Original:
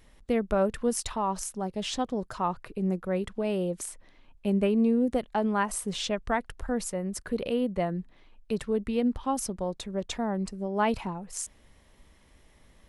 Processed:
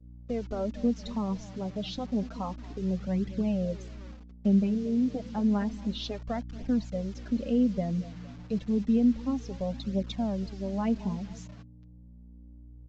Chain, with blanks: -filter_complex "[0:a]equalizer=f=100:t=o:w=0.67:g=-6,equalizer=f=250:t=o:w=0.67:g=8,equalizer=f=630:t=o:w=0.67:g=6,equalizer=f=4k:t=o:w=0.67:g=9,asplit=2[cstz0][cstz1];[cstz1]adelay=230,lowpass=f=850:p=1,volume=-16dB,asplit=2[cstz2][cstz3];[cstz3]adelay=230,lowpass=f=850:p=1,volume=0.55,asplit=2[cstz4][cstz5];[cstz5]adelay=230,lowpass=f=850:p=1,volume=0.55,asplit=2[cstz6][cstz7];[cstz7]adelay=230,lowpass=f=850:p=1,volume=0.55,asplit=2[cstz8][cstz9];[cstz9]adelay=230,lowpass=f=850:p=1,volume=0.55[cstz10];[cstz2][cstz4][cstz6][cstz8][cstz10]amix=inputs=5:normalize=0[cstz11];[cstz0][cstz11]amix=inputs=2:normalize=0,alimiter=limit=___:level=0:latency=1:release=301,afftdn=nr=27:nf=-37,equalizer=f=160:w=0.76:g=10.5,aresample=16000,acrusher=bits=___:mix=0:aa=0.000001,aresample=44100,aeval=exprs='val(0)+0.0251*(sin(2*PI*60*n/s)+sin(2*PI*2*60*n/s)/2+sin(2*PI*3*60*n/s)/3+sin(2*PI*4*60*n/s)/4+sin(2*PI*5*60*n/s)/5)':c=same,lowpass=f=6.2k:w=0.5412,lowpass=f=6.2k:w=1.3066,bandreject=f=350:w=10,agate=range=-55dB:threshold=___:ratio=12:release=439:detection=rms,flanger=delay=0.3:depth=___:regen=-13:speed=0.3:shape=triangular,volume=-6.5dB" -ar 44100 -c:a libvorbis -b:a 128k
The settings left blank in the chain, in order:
-15.5dB, 6, -30dB, 6.9